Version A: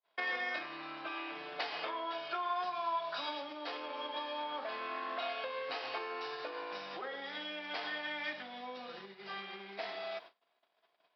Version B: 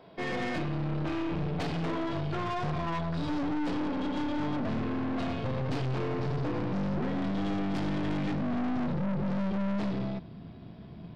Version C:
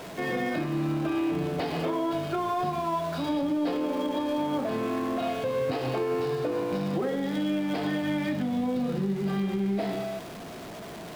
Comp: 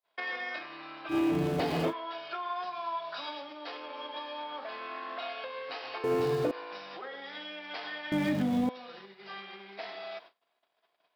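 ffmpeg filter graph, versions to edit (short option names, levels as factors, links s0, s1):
-filter_complex "[2:a]asplit=3[s0][s1][s2];[0:a]asplit=4[s3][s4][s5][s6];[s3]atrim=end=1.14[s7];[s0]atrim=start=1.08:end=1.94[s8];[s4]atrim=start=1.88:end=6.042[s9];[s1]atrim=start=6.038:end=6.512[s10];[s5]atrim=start=6.508:end=8.122[s11];[s2]atrim=start=8.118:end=8.692[s12];[s6]atrim=start=8.688[s13];[s7][s8]acrossfade=d=0.06:c1=tri:c2=tri[s14];[s14][s9]acrossfade=d=0.06:c1=tri:c2=tri[s15];[s15][s10]acrossfade=d=0.004:c1=hsin:c2=hsin[s16];[s16][s11]acrossfade=d=0.004:c1=hsin:c2=hsin[s17];[s17][s12]acrossfade=d=0.004:c1=hsin:c2=hsin[s18];[s18][s13]acrossfade=d=0.004:c1=hsin:c2=hsin"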